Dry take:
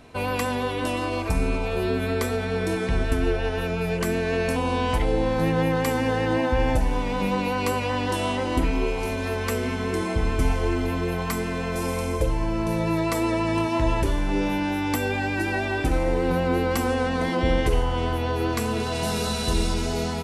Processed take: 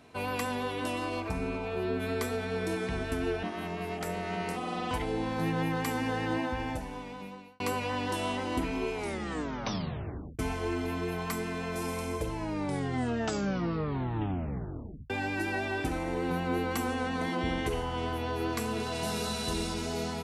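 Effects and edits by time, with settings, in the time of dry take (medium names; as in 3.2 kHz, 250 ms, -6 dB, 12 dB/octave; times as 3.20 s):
1.19–1.99 s: treble shelf 6.5 kHz -> 4.3 kHz -11.5 dB
3.43–4.91 s: ring modulator 260 Hz
6.32–7.60 s: fade out
8.94 s: tape stop 1.45 s
12.34 s: tape stop 2.76 s
15.93–17.75 s: band-stop 5 kHz, Q 11
whole clip: high-pass 59 Hz; bass shelf 82 Hz -6.5 dB; band-stop 530 Hz, Q 12; trim -6 dB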